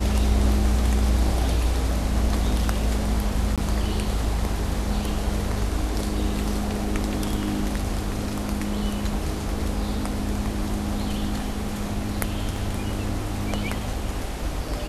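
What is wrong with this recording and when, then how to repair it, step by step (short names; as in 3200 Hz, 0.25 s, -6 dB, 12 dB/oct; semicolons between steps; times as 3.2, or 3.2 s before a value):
3.56–3.58 gap 17 ms
12.56 gap 2 ms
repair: interpolate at 3.56, 17 ms; interpolate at 12.56, 2 ms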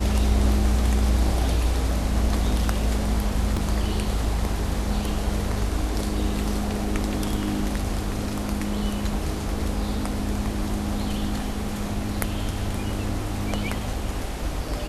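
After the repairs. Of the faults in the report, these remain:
none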